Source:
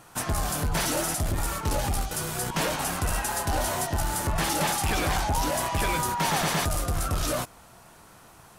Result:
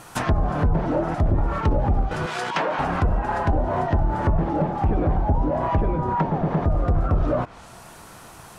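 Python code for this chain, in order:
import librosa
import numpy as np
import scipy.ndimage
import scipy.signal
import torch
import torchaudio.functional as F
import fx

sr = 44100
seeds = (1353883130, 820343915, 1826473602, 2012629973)

y = fx.weighting(x, sr, curve='A', at=(2.26, 2.79))
y = fx.env_lowpass_down(y, sr, base_hz=500.0, full_db=-22.0)
y = y * librosa.db_to_amplitude(8.0)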